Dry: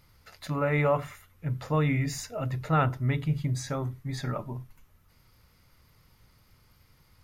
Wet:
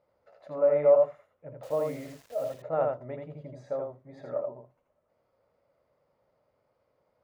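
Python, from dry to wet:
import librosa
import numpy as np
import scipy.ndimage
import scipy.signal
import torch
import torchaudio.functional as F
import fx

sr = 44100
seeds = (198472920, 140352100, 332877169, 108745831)

y = fx.bandpass_q(x, sr, hz=580.0, q=5.8)
y = fx.quant_dither(y, sr, seeds[0], bits=10, dither='none', at=(1.63, 2.54))
y = y + 10.0 ** (-3.5 / 20.0) * np.pad(y, (int(81 * sr / 1000.0), 0))[:len(y)]
y = y * 10.0 ** (7.5 / 20.0)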